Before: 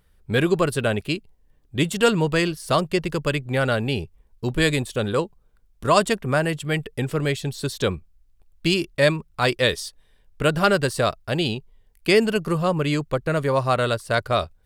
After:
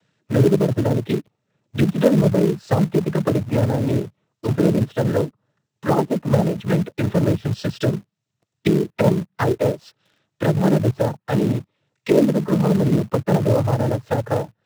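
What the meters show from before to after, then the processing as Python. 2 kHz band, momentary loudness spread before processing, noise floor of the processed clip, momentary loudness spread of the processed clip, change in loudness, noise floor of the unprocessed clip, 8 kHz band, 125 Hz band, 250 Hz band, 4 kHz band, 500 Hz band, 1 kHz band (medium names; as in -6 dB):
-8.5 dB, 9 LU, -79 dBFS, 8 LU, +2.5 dB, -60 dBFS, -5.5 dB, +6.0 dB, +6.0 dB, -10.0 dB, +1.5 dB, -2.5 dB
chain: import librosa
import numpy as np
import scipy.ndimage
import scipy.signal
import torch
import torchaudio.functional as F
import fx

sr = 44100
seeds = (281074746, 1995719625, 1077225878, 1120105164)

p1 = fx.env_lowpass_down(x, sr, base_hz=450.0, full_db=-17.5)
p2 = fx.noise_vocoder(p1, sr, seeds[0], bands=12)
p3 = fx.hpss(p2, sr, part='harmonic', gain_db=4)
p4 = fx.quant_companded(p3, sr, bits=4)
y = p3 + (p4 * librosa.db_to_amplitude(-5.0))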